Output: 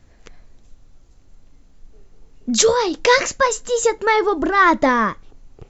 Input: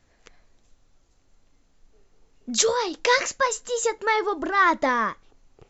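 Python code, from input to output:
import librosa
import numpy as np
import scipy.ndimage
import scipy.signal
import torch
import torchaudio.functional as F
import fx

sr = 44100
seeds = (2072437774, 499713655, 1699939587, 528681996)

y = fx.low_shelf(x, sr, hz=310.0, db=9.5)
y = y * 10.0 ** (4.5 / 20.0)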